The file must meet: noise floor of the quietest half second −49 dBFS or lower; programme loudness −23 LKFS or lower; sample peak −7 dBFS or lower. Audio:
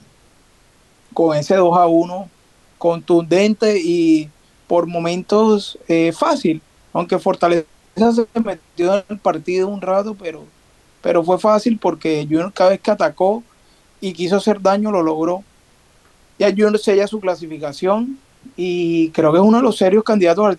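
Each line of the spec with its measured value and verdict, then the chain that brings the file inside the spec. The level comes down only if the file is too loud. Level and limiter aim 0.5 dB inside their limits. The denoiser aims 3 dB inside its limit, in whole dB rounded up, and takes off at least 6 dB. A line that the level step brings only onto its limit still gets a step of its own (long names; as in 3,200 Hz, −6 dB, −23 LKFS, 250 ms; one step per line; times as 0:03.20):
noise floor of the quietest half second −53 dBFS: in spec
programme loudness −16.5 LKFS: out of spec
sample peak −3.5 dBFS: out of spec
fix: level −7 dB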